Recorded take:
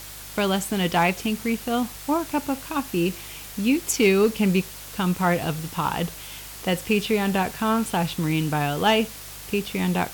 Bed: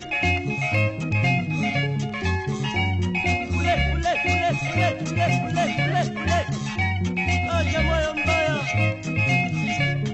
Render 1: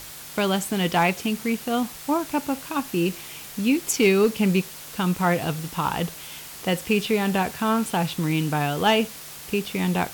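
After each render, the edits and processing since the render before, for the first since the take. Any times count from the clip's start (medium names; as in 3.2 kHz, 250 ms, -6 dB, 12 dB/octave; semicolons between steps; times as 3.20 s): de-hum 50 Hz, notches 2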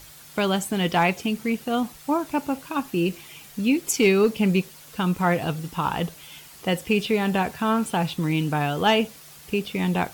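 noise reduction 8 dB, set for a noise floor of -40 dBFS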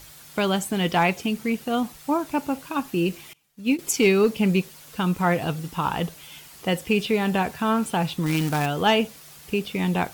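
3.33–3.79 s: upward expansion 2.5:1, over -33 dBFS; 8.26–8.66 s: companded quantiser 4-bit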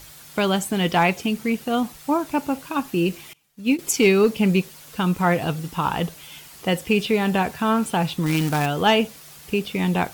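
trim +2 dB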